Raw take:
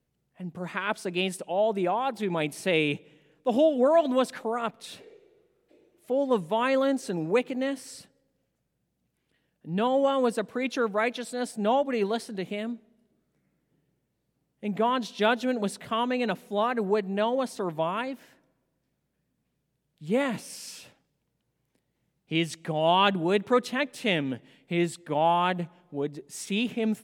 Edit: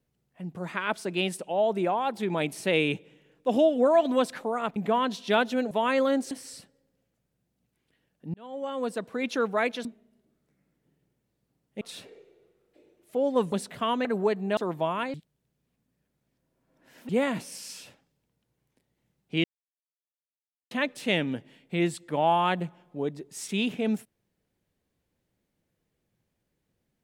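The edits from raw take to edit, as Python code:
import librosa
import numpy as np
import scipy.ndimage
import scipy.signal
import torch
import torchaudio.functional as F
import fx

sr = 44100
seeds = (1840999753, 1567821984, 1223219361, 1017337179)

y = fx.edit(x, sr, fx.swap(start_s=4.76, length_s=1.71, other_s=14.67, other_length_s=0.95),
    fx.cut(start_s=7.07, length_s=0.65),
    fx.fade_in_span(start_s=9.75, length_s=0.97),
    fx.cut(start_s=11.26, length_s=1.45),
    fx.cut(start_s=16.15, length_s=0.57),
    fx.cut(start_s=17.24, length_s=0.31),
    fx.reverse_span(start_s=18.12, length_s=1.95),
    fx.silence(start_s=22.42, length_s=1.27), tone=tone)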